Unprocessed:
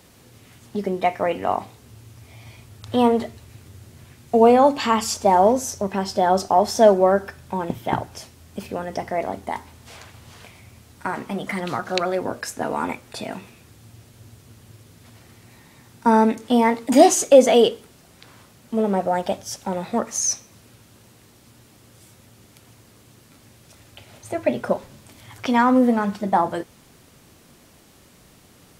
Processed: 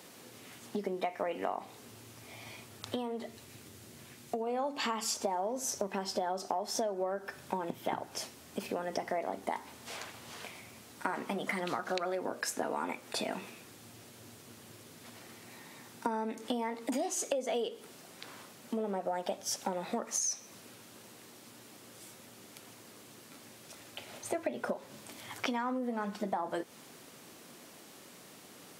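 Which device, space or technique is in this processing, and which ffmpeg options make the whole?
serial compression, leveller first: -filter_complex "[0:a]acompressor=threshold=0.112:ratio=2.5,acompressor=threshold=0.0316:ratio=10,highpass=230,asettb=1/sr,asplit=3[s0][s1][s2];[s0]atrim=end=2.904[s3];[s1]atrim=start=2.9:end=4.47,asetpts=PTS-STARTPTS,afade=t=in:d=0.004:c=qsin,afade=t=out:st=1.566:d=0.004:c=qsin,equalizer=f=920:t=o:w=2.7:g=-3.5[s4];[s2]atrim=start=4.466[s5];[s3][s4]acrossfade=d=0.004:c1=hsin:c2=qsin[s6];[s6][s5]acrossfade=d=0.004:c1=qsin:c2=hsin"

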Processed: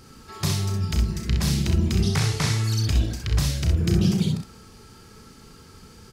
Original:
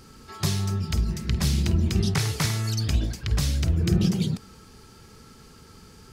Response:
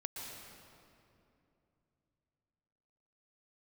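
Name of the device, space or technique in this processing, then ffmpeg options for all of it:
slapback doubling: -filter_complex "[0:a]asettb=1/sr,asplit=3[s0][s1][s2];[s0]atrim=end=2.194[s3];[s1]atrim=start=2.19:end=2.64,asetpts=PTS-STARTPTS,afade=t=in:d=0.004:c=qsin,afade=t=out:st=0.446:d=0.004:c=qsin,lowpass=9400[s4];[s2]atrim=start=2.636[s5];[s3][s4]acrossfade=d=0.004:c1=hsin:c2=qsin[s6];[s6][s5]acrossfade=d=0.004:c1=qsin:c2=hsin,asplit=3[s7][s8][s9];[s8]adelay=34,volume=0.422[s10];[s9]adelay=64,volume=0.562[s11];[s7][s10][s11]amix=inputs=3:normalize=0"

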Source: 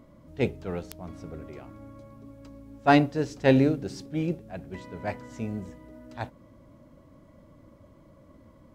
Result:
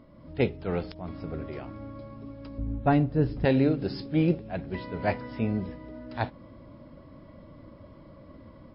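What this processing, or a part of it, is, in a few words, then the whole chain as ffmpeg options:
low-bitrate web radio: -filter_complex "[0:a]asettb=1/sr,asplit=3[s0][s1][s2];[s0]atrim=end=2.584[s3];[s1]atrim=start=2.58:end=3.45,asetpts=PTS-STARTPTS,afade=t=in:d=0.004:c=qsin,afade=t=out:st=0.866:d=0.004:c=qsin,aemphasis=mode=reproduction:type=riaa[s4];[s2]atrim=start=3.446[s5];[s3][s4]acrossfade=d=0.004:c1=hsin:c2=qsin[s6];[s6][s5]acrossfade=d=0.004:c1=qsin:c2=hsin,dynaudnorm=f=130:g=3:m=1.88,alimiter=limit=0.251:level=0:latency=1:release=435" -ar 12000 -c:a libmp3lame -b:a 24k

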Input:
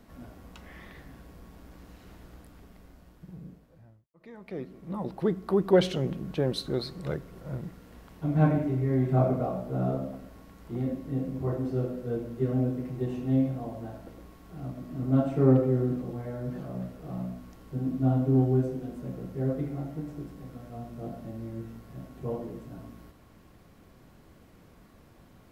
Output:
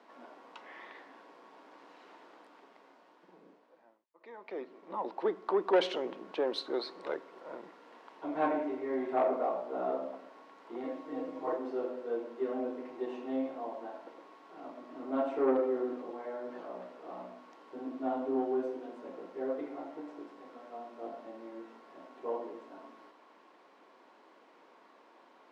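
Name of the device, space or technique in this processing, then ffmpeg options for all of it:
intercom: -filter_complex "[0:a]highpass=360,lowpass=4000,equalizer=f=950:t=o:w=0.39:g=8,asoftclip=type=tanh:threshold=0.112,highpass=f=260:w=0.5412,highpass=f=260:w=1.3066,asettb=1/sr,asplit=3[s0][s1][s2];[s0]atrim=end=10.834[s3];[s1]atrim=start=10.83:end=11.57,asetpts=PTS-STARTPTS,afade=t=in:d=0.004:c=qsin,afade=t=out:st=0.736:d=0.004:c=qsin,aecho=1:1:6.4:0.82,atrim=end_sample=32634[s4];[s2]atrim=start=11.566[s5];[s3][s4]acrossfade=d=0.004:c1=hsin:c2=qsin[s6];[s6][s5]acrossfade=d=0.004:c1=qsin:c2=hsin"

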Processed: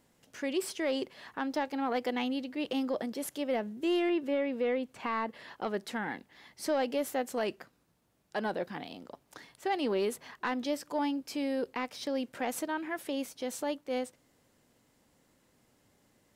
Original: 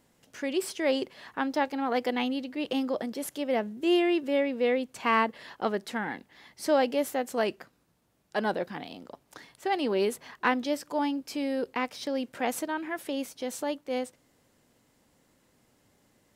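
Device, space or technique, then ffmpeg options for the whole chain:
soft clipper into limiter: -filter_complex "[0:a]asoftclip=type=tanh:threshold=0.178,alimiter=limit=0.0944:level=0:latency=1:release=121,asettb=1/sr,asplit=3[s0][s1][s2];[s0]atrim=end=4.094[s3];[s1]atrim=start=4.09:end=5.55,asetpts=PTS-STARTPTS,afade=t=in:d=0.004:c=qsin,afade=t=out:st=1.456:d=0.004:c=qsin,acrossover=split=3100[s4][s5];[s5]acompressor=threshold=0.002:ratio=4:attack=1:release=60[s6];[s4][s6]amix=inputs=2:normalize=0[s7];[s2]atrim=start=5.546[s8];[s3][s7]acrossfade=d=0.004:c1=hsin:c2=qsin[s9];[s9][s8]acrossfade=d=0.004:c1=qsin:c2=hsin,volume=0.794"

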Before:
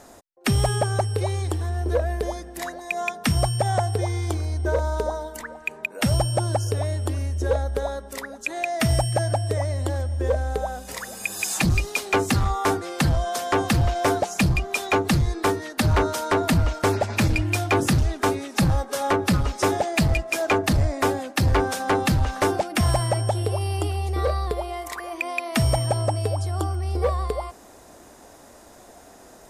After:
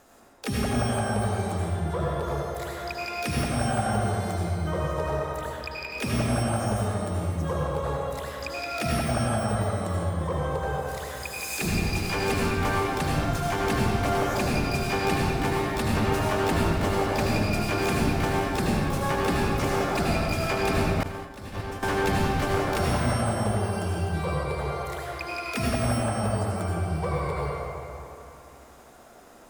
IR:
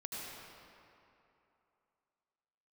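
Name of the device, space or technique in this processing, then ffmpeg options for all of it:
shimmer-style reverb: -filter_complex "[0:a]asplit=2[s0][s1];[s1]asetrate=88200,aresample=44100,atempo=0.5,volume=0.562[s2];[s0][s2]amix=inputs=2:normalize=0[s3];[1:a]atrim=start_sample=2205[s4];[s3][s4]afir=irnorm=-1:irlink=0,asettb=1/sr,asplit=3[s5][s6][s7];[s5]atrim=end=21.034[s8];[s6]atrim=start=21.03:end=21.83,asetpts=PTS-STARTPTS,afade=t=in:d=0.004:c=qsin,afade=t=out:st=0.796:d=0.004:c=qsin,agate=range=0.0224:threshold=0.282:ratio=3:detection=peak[s9];[s7]atrim=start=21.826[s10];[s8][s9]acrossfade=d=0.004:c1=hsin:c2=qsin[s11];[s11][s10]acrossfade=d=0.004:c1=qsin:c2=hsin,volume=0.596"

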